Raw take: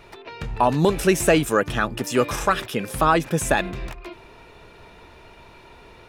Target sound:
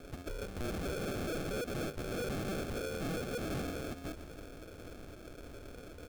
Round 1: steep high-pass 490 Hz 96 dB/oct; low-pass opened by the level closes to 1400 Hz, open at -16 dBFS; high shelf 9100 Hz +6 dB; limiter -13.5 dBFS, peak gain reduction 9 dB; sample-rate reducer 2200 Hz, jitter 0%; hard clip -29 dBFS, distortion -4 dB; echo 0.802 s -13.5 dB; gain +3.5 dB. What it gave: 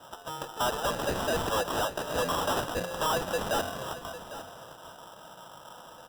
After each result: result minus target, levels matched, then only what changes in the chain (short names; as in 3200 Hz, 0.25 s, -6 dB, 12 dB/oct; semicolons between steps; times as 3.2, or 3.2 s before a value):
sample-rate reducer: distortion -11 dB; echo-to-direct +9.5 dB; hard clip: distortion -5 dB
change: sample-rate reducer 970 Hz, jitter 0%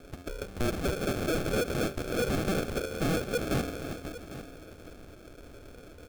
echo-to-direct +9.5 dB; hard clip: distortion -5 dB
change: echo 0.802 s -23 dB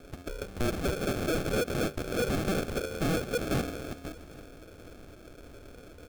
hard clip: distortion -5 dB
change: hard clip -39 dBFS, distortion 0 dB